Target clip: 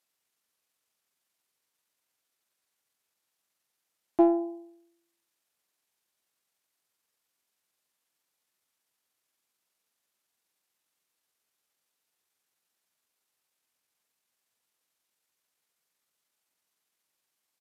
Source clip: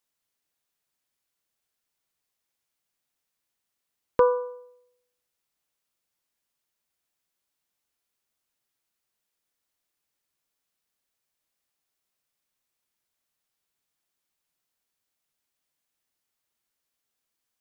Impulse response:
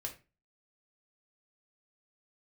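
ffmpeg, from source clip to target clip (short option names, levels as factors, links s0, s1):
-filter_complex "[0:a]asetrate=30296,aresample=44100,atempo=1.45565,highpass=f=210:p=1,asplit=2[s0][s1];[s1]asoftclip=type=tanh:threshold=0.0708,volume=0.355[s2];[s0][s2]amix=inputs=2:normalize=0,volume=0.891"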